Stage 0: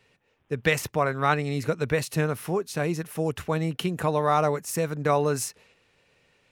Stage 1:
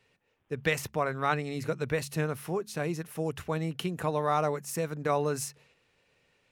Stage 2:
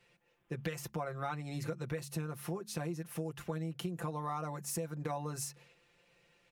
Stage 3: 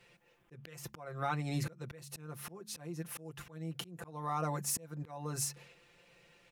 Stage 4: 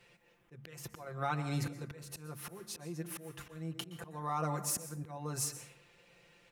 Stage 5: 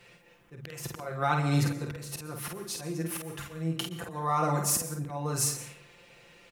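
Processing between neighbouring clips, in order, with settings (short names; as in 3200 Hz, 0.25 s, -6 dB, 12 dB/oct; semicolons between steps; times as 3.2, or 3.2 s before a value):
de-hum 70.57 Hz, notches 3; gain -5 dB
comb 5.8 ms, depth 91%; dynamic EQ 2500 Hz, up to -5 dB, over -44 dBFS, Q 0.87; compressor, threshold -33 dBFS, peak gain reduction 13 dB; gain -2 dB
auto swell 0.391 s; gain +5 dB
plate-style reverb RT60 0.72 s, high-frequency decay 0.5×, pre-delay 0.11 s, DRR 11.5 dB
doubler 49 ms -4.5 dB; gain +7 dB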